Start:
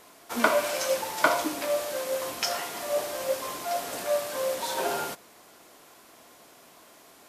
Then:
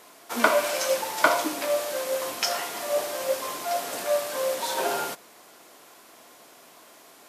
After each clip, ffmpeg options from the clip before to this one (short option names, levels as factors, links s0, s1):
-af "highpass=f=210:p=1,volume=1.33"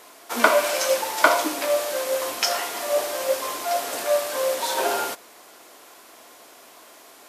-af "equalizer=f=160:w=1.8:g=-9,volume=1.5"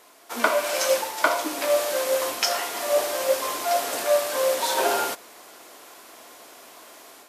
-af "dynaudnorm=f=160:g=3:m=2.24,volume=0.531"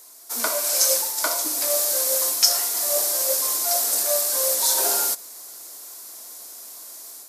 -af "aexciter=amount=8:drive=2.1:freq=4200,volume=0.473"